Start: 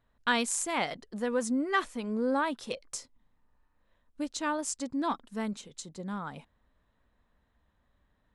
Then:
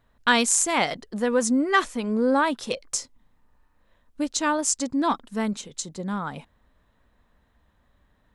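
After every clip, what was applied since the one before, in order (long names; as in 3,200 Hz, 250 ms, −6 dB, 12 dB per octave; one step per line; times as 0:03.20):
dynamic equaliser 6,400 Hz, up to +5 dB, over −49 dBFS, Q 1.5
level +7.5 dB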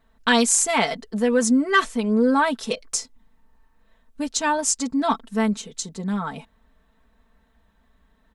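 comb filter 4.5 ms, depth 80%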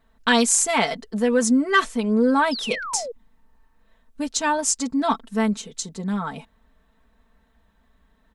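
sound drawn into the spectrogram fall, 0:02.51–0:03.12, 440–5,400 Hz −31 dBFS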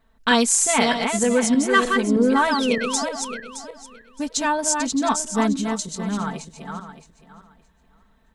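feedback delay that plays each chunk backwards 309 ms, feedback 44%, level −4.5 dB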